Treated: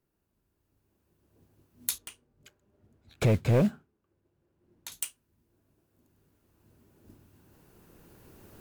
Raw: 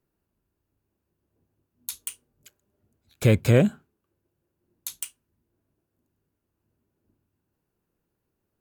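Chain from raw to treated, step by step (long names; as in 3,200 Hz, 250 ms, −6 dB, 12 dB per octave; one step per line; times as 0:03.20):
camcorder AGC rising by 7.3 dB per second
soft clipping −14 dBFS, distortion −11 dB
noise that follows the level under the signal 19 dB
0:01.98–0:04.92: low-pass filter 2,200 Hz 6 dB per octave
level −2 dB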